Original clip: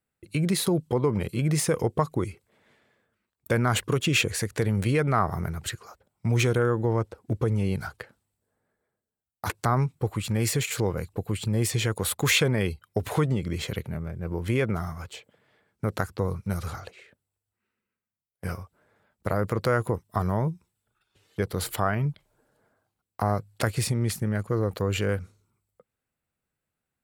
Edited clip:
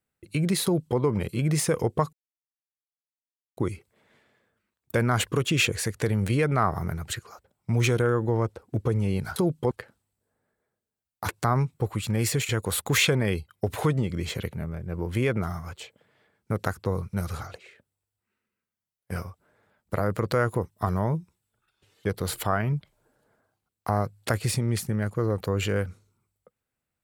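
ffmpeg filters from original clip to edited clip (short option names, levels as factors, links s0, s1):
-filter_complex "[0:a]asplit=5[s0][s1][s2][s3][s4];[s0]atrim=end=2.13,asetpts=PTS-STARTPTS,afade=t=out:st=2.126:d=0.004:c=hsin,apad=pad_dur=1.44[s5];[s1]atrim=start=2.13:end=7.922,asetpts=PTS-STARTPTS,afade=t=in:d=0.004:c=hsin[s6];[s2]atrim=start=0.638:end=0.992[s7];[s3]atrim=start=7.918:end=10.702[s8];[s4]atrim=start=11.818[s9];[s5][s6]concat=n=2:v=0:a=1[s10];[s10][s7]acrossfade=d=0.004:c1=hsin:c2=hsin[s11];[s11][s8]acrossfade=d=0.004:c1=hsin:c2=hsin[s12];[s12][s9]acrossfade=d=0.004:c1=hsin:c2=hsin"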